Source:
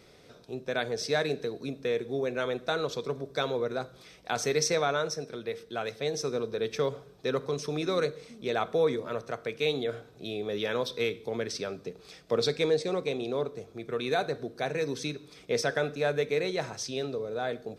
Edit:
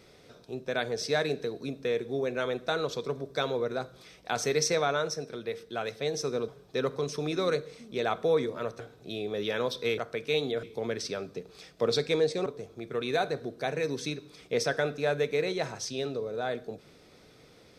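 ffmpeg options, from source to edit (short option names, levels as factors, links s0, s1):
-filter_complex "[0:a]asplit=6[s0][s1][s2][s3][s4][s5];[s0]atrim=end=6.482[s6];[s1]atrim=start=6.978:end=9.302[s7];[s2]atrim=start=9.948:end=11.132[s8];[s3]atrim=start=9.298:end=9.952[s9];[s4]atrim=start=11.128:end=12.962[s10];[s5]atrim=start=13.438[s11];[s6][s7]acrossfade=d=0.004:c1=hsin:c2=hsin[s12];[s12][s8]acrossfade=d=0.004:c1=hsin:c2=hsin[s13];[s13][s9]acrossfade=d=0.004:c1=hsin:c2=hsin[s14];[s14][s10]acrossfade=d=0.004:c1=hsin:c2=hsin[s15];[s15][s11]acrossfade=d=0.004:c1=hsin:c2=hsin"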